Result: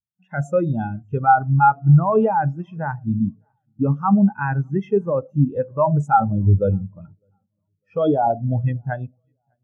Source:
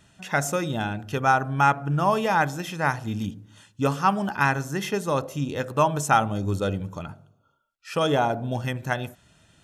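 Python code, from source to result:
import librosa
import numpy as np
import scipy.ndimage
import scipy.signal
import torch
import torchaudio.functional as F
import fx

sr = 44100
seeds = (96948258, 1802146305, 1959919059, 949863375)

p1 = fx.peak_eq(x, sr, hz=4100.0, db=-2.5, octaves=0.21)
p2 = fx.over_compress(p1, sr, threshold_db=-24.0, ratio=-0.5)
p3 = p1 + F.gain(torch.from_numpy(p2), 0.0).numpy()
p4 = fx.high_shelf(p3, sr, hz=7200.0, db=-2.5)
p5 = fx.echo_feedback(p4, sr, ms=603, feedback_pct=56, wet_db=-18.5)
y = fx.spectral_expand(p5, sr, expansion=2.5)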